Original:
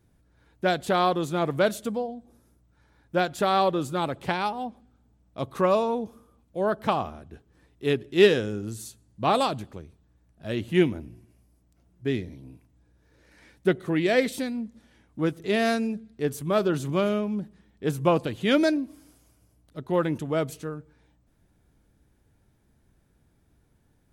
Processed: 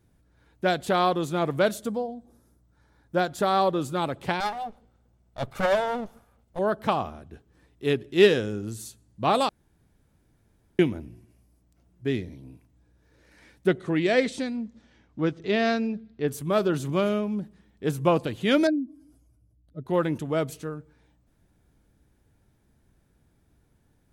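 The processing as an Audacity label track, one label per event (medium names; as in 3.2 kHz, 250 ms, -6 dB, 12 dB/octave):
1.740000	3.750000	peaking EQ 2.6 kHz -5.5 dB 0.67 oct
4.400000	6.590000	comb filter that takes the minimum delay 1.4 ms
9.490000	10.790000	room tone
13.670000	16.270000	low-pass 9.8 kHz -> 4.6 kHz 24 dB/octave
18.670000	19.860000	spectral contrast enhancement exponent 1.7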